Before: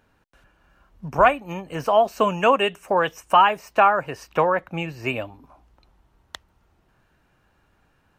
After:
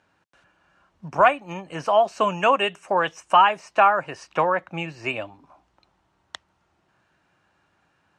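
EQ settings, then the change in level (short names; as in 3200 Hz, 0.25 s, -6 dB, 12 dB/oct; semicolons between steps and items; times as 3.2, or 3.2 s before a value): speaker cabinet 130–8700 Hz, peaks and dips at 130 Hz -4 dB, 240 Hz -7 dB, 450 Hz -6 dB; 0.0 dB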